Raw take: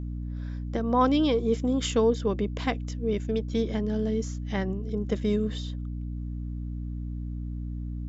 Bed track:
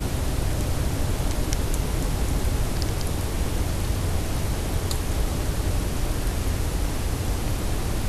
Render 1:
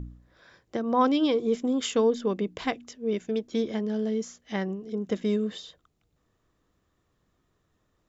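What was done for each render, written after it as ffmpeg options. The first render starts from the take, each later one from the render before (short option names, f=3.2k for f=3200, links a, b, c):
-af "bandreject=f=60:t=h:w=4,bandreject=f=120:t=h:w=4,bandreject=f=180:t=h:w=4,bandreject=f=240:t=h:w=4,bandreject=f=300:t=h:w=4"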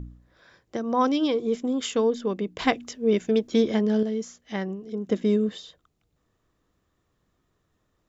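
-filter_complex "[0:a]asettb=1/sr,asplit=3[a][b][c];[a]atrim=end=0.764[d];[b]atrim=start=0.76:end=1.28,asetpts=PTS-STARTPTS,afade=t=in:d=0.004:c=qsin,afade=t=out:st=0.516:d=0.004:c=qsin,equalizer=f=5.9k:t=o:w=0.22:g=10.5[e];[c]atrim=start=1.276[f];[d][e]acrossfade=d=0.004:c1=hsin:c2=qsin[g];[g][f]acrossfade=d=0.004:c1=qsin:c2=hsin,asettb=1/sr,asplit=3[h][i][j];[h]atrim=end=5.084[k];[i]atrim=start=5.08:end=5.49,asetpts=PTS-STARTPTS,afade=t=in:d=0.004:c=qsin,afade=t=out:st=0.406:d=0.004:c=qsin,equalizer=f=300:t=o:w=1.7:g=5.5[l];[j]atrim=start=5.486[m];[k][l]acrossfade=d=0.004:c1=hsin:c2=qsin[n];[n][m]acrossfade=d=0.004:c1=qsin:c2=hsin,asplit=3[o][p][q];[o]atrim=end=2.592[r];[p]atrim=start=2.588:end=4.032,asetpts=PTS-STARTPTS,volume=6.5dB[s];[q]atrim=start=4.028[t];[r][s]acrossfade=d=0.004:c1=hsin:c2=hsin[u];[u][t]acrossfade=d=0.004:c1=hsin:c2=hsin"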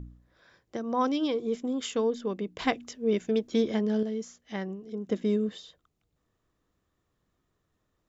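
-af "volume=-4.5dB"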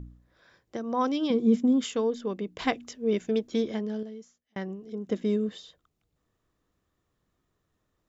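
-filter_complex "[0:a]asettb=1/sr,asplit=3[a][b][c];[a]atrim=end=1.304[d];[b]atrim=start=1.3:end=1.84,asetpts=PTS-STARTPTS,afade=t=in:d=0.004:c=qsin,afade=t=out:st=0.536:d=0.004:c=qsin,equalizer=f=210:t=o:w=0.77:g=14.5[e];[c]atrim=start=1.836[f];[d][e]acrossfade=d=0.004:c1=hsin:c2=qsin[g];[g][f]acrossfade=d=0.004:c1=qsin:c2=hsin,asplit=2[h][i];[h]atrim=end=4.56,asetpts=PTS-STARTPTS,afade=t=out:st=3.37:d=1.19[j];[i]atrim=start=4.56,asetpts=PTS-STARTPTS,afade=t=in:d=0.004:c=hsin[k];[j][k]concat=n=2:v=0:a=1"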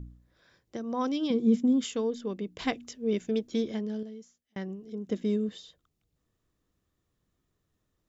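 -af "equalizer=f=1k:t=o:w=2.6:g=-5.5"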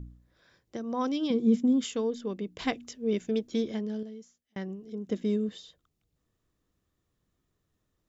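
-af anull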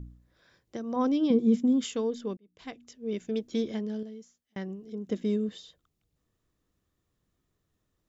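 -filter_complex "[0:a]asettb=1/sr,asplit=3[a][b][c];[a]atrim=end=0.964[d];[b]atrim=start=0.96:end=1.39,asetpts=PTS-STARTPTS,afade=t=in:d=0.004:c=qsin,afade=t=out:st=0.426:d=0.004:c=qsin,tiltshelf=f=1.1k:g=5[e];[c]atrim=start=1.386[f];[d][e]acrossfade=d=0.004:c1=hsin:c2=qsin[g];[g][f]acrossfade=d=0.004:c1=qsin:c2=hsin,asplit=2[h][i];[h]atrim=end=2.37,asetpts=PTS-STARTPTS,afade=t=out:st=2.366:d=0.004:c=hsin[j];[i]atrim=start=2.37,asetpts=PTS-STARTPTS,afade=t=in:d=1.25[k];[j][k]concat=n=2:v=0:a=1"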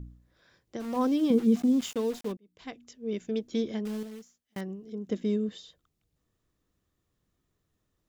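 -filter_complex "[0:a]asplit=3[a][b][c];[a]afade=t=out:st=0.79:d=0.02[d];[b]aeval=exprs='val(0)*gte(abs(val(0)),0.0106)':c=same,afade=t=in:st=0.79:d=0.02,afade=t=out:st=2.31:d=0.02[e];[c]afade=t=in:st=2.31:d=0.02[f];[d][e][f]amix=inputs=3:normalize=0,asettb=1/sr,asplit=3[g][h][i];[g]atrim=end=3.854[j];[h]atrim=start=3.85:end=4.61,asetpts=PTS-STARTPTS,afade=t=in:d=0.004:c=qsin,afade=t=out:st=0.756:d=0.004:c=qsin,acrusher=bits=3:mode=log:mix=0:aa=0.000001[k];[i]atrim=start=4.606[l];[j][k]acrossfade=d=0.004:c1=hsin:c2=qsin[m];[m][l]acrossfade=d=0.004:c1=qsin:c2=hsin"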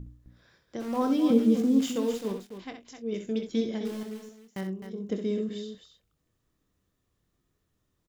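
-filter_complex "[0:a]asplit=2[a][b];[b]adelay=26,volume=-10.5dB[c];[a][c]amix=inputs=2:normalize=0,aecho=1:1:64.14|259.5:0.398|0.355"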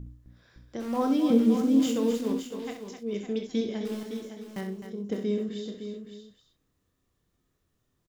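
-filter_complex "[0:a]asplit=2[a][b];[b]adelay=34,volume=-11dB[c];[a][c]amix=inputs=2:normalize=0,asplit=2[d][e];[e]aecho=0:1:561:0.335[f];[d][f]amix=inputs=2:normalize=0"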